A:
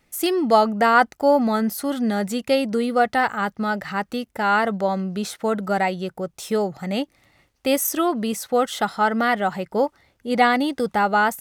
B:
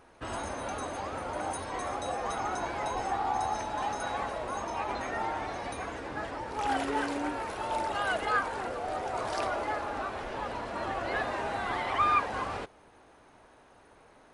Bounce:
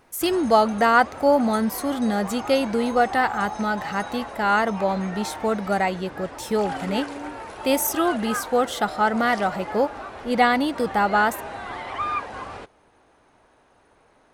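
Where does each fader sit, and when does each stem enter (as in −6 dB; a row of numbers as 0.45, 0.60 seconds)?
−1.0, −1.0 decibels; 0.00, 0.00 seconds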